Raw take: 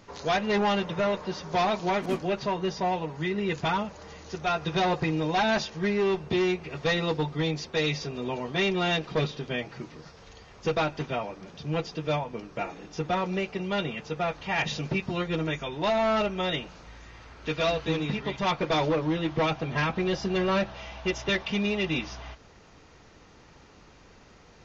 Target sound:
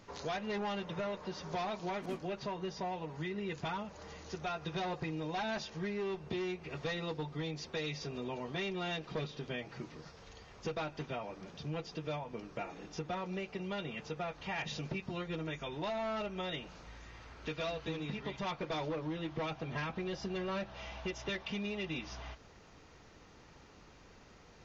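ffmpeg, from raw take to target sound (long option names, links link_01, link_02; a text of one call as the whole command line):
ffmpeg -i in.wav -af "acompressor=threshold=-33dB:ratio=3,volume=-4.5dB" out.wav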